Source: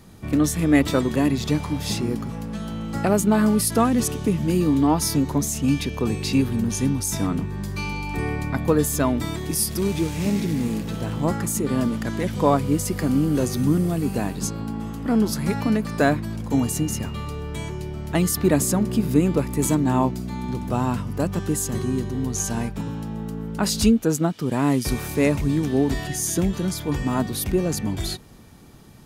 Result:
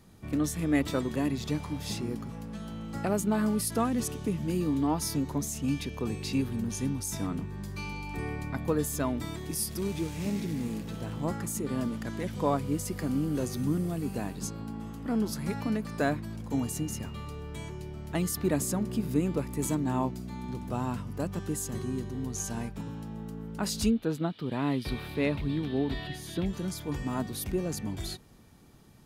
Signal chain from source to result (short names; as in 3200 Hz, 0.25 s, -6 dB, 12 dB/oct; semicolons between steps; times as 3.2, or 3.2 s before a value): 23.9–26.46 resonant high shelf 5000 Hz -9.5 dB, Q 3; gain -9 dB